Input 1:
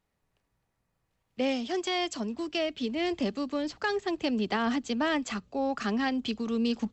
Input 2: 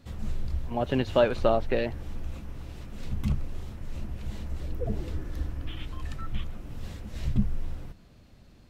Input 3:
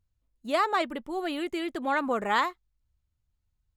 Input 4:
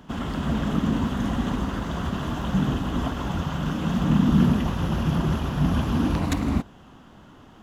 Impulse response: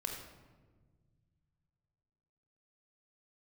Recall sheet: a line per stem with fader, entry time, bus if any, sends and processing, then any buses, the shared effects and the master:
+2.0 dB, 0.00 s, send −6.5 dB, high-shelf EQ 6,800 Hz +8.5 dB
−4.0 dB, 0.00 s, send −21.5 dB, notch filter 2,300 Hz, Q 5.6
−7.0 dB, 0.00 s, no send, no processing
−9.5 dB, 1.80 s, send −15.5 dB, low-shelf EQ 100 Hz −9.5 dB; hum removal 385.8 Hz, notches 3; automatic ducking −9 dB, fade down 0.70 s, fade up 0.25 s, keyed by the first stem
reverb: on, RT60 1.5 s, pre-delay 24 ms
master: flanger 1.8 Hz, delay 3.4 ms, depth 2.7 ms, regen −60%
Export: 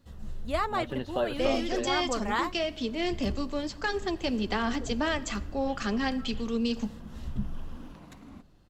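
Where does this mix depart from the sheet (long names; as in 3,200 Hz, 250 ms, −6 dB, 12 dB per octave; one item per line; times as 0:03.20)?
stem 1: send −6.5 dB → −12.5 dB
stem 3 −7.0 dB → 0.0 dB
stem 4 −9.5 dB → −19.0 dB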